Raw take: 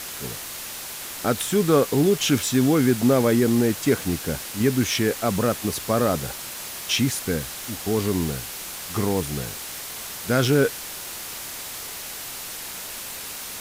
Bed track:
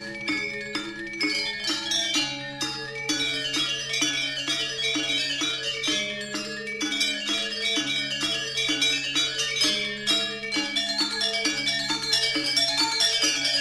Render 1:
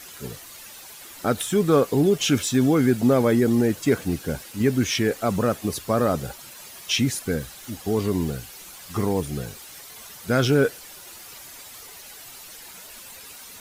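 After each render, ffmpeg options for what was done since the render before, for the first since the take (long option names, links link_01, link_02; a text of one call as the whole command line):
ffmpeg -i in.wav -af "afftdn=noise_reduction=11:noise_floor=-35" out.wav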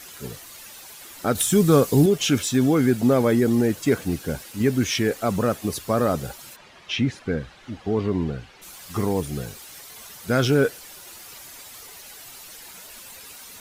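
ffmpeg -i in.wav -filter_complex "[0:a]asettb=1/sr,asplit=3[link_01][link_02][link_03];[link_01]atrim=end=1.354[link_04];[link_02]atrim=start=1.35:end=2.06,asetpts=PTS-STARTPTS,afade=type=in:duration=0.004:curve=qsin,afade=type=out:start_time=0.706:duration=0.004:curve=qsin,bass=frequency=250:gain=7,treble=frequency=4000:gain=8[link_05];[link_03]atrim=start=2.056[link_06];[link_04][link_05]acrossfade=duration=0.004:curve1=hsin:curve2=qsin[link_07];[link_07][link_06]acrossfade=duration=0.004:curve1=qsin:curve2=hsin,asplit=3[link_08][link_09][link_10];[link_08]afade=type=out:start_time=6.55:duration=0.02[link_11];[link_09]lowpass=2900,afade=type=in:start_time=6.55:duration=0.02,afade=type=out:start_time=8.61:duration=0.02[link_12];[link_10]afade=type=in:start_time=8.61:duration=0.02[link_13];[link_11][link_12][link_13]amix=inputs=3:normalize=0" out.wav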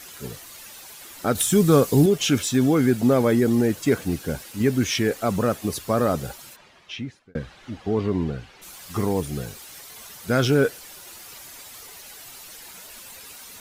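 ffmpeg -i in.wav -filter_complex "[0:a]asplit=2[link_01][link_02];[link_01]atrim=end=7.35,asetpts=PTS-STARTPTS,afade=type=out:start_time=6.32:duration=1.03[link_03];[link_02]atrim=start=7.35,asetpts=PTS-STARTPTS,afade=type=in:duration=0.004:curve=hsin[link_04];[link_03][link_04]concat=n=2:v=0:a=1" out.wav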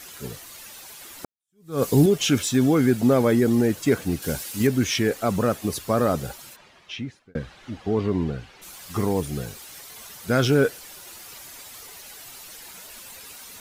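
ffmpeg -i in.wav -filter_complex "[0:a]asettb=1/sr,asplit=3[link_01][link_02][link_03];[link_01]atrim=end=4.224[link_04];[link_02]atrim=start=4.22:end=4.67,asetpts=PTS-STARTPTS,afade=type=in:duration=0.004:curve=qsin,afade=type=out:start_time=0.446:duration=0.004:curve=qsin,highshelf=frequency=3300:gain=9[link_05];[link_03]atrim=start=4.666[link_06];[link_04][link_05]acrossfade=duration=0.004:curve1=hsin:curve2=qsin[link_07];[link_07][link_06]acrossfade=duration=0.004:curve1=qsin:curve2=hsin,asplit=2[link_08][link_09];[link_08]atrim=end=1.25,asetpts=PTS-STARTPTS,afade=type=out:start_time=1.246:duration=0.004:curve=hsin[link_10];[link_09]atrim=start=1.25,asetpts=PTS-STARTPTS,afade=type=in:duration=0.58:curve=exp[link_11];[link_10][link_11]concat=n=2:v=0:a=1" out.wav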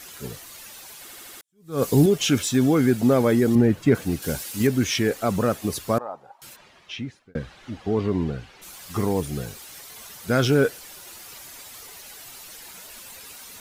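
ffmpeg -i in.wav -filter_complex "[0:a]asettb=1/sr,asplit=3[link_01][link_02][link_03];[link_01]atrim=end=3.554[link_04];[link_02]atrim=start=3.55:end=3.95,asetpts=PTS-STARTPTS,afade=type=in:duration=0.004:curve=qsin,afade=type=out:start_time=0.396:duration=0.004:curve=qsin,bass=frequency=250:gain=6,treble=frequency=4000:gain=-12[link_05];[link_03]atrim=start=3.946[link_06];[link_04][link_05]acrossfade=duration=0.004:curve1=hsin:curve2=qsin[link_07];[link_07][link_06]acrossfade=duration=0.004:curve1=qsin:curve2=hsin,asettb=1/sr,asplit=3[link_08][link_09][link_10];[link_08]atrim=end=5.984[link_11];[link_09]atrim=start=5.98:end=6.42,asetpts=PTS-STARTPTS,afade=type=in:duration=0.004:curve=qsin,afade=type=out:start_time=0.436:duration=0.004:curve=qsin,bandpass=frequency=870:width_type=q:width=5[link_12];[link_10]atrim=start=6.416[link_13];[link_11][link_12]acrossfade=duration=0.004:curve1=hsin:curve2=qsin[link_14];[link_14][link_13]acrossfade=duration=0.004:curve1=qsin:curve2=hsin,asplit=6[link_15][link_16][link_17][link_18][link_19][link_20];[link_15]atrim=end=1.092[link_21];[link_16]atrim=start=1.008:end=1.092[link_22];[link_17]atrim=start=1.008:end=1.092[link_23];[link_18]atrim=start=1.008:end=1.092[link_24];[link_19]atrim=start=1.008:end=1.092[link_25];[link_20]atrim=start=1.408[link_26];[link_21][link_22]acrossfade=duration=0.004:curve1=hsin:curve2=hsin[link_27];[link_27][link_23]acrossfade=duration=0.004:curve1=hsin:curve2=hsin[link_28];[link_28][link_24]acrossfade=duration=0.004:curve1=hsin:curve2=hsin[link_29];[link_29][link_25]acrossfade=duration=0.004:curve1=hsin:curve2=hsin[link_30];[link_30][link_26]acrossfade=duration=0.004:curve1=hsin:curve2=hsin" out.wav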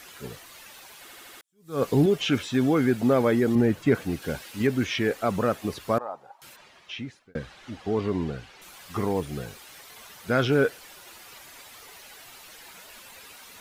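ffmpeg -i in.wav -filter_complex "[0:a]acrossover=split=3800[link_01][link_02];[link_02]acompressor=threshold=-48dB:ratio=4:attack=1:release=60[link_03];[link_01][link_03]amix=inputs=2:normalize=0,lowshelf=frequency=350:gain=-5.5" out.wav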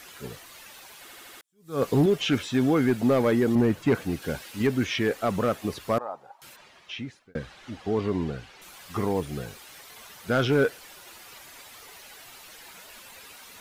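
ffmpeg -i in.wav -af "asoftclip=type=hard:threshold=-15dB" out.wav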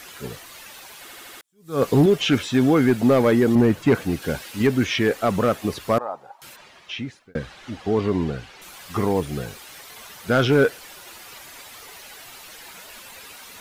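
ffmpeg -i in.wav -af "volume=5dB" out.wav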